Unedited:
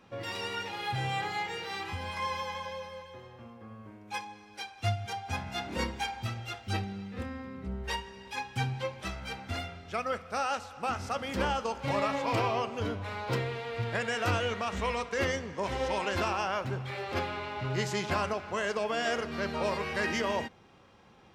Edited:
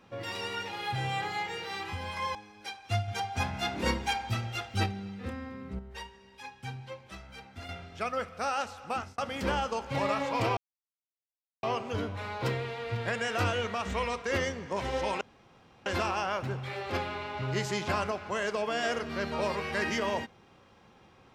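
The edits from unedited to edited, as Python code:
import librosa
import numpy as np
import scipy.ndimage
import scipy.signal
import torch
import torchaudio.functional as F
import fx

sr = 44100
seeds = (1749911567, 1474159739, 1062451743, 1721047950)

y = fx.edit(x, sr, fx.cut(start_s=2.35, length_s=1.93),
    fx.clip_gain(start_s=5.01, length_s=1.78, db=3.5),
    fx.clip_gain(start_s=7.72, length_s=1.9, db=-8.5),
    fx.fade_out_span(start_s=10.85, length_s=0.26),
    fx.insert_silence(at_s=12.5, length_s=1.06),
    fx.insert_room_tone(at_s=16.08, length_s=0.65), tone=tone)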